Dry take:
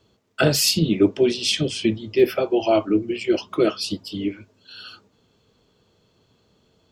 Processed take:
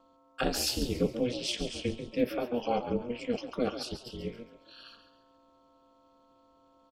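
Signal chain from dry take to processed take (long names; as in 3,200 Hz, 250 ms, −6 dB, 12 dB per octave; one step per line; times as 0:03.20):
echo with shifted repeats 138 ms, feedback 37%, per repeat +47 Hz, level −10.5 dB
hum with harmonics 400 Hz, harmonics 3, −52 dBFS −2 dB per octave
ring modulation 120 Hz
level −9 dB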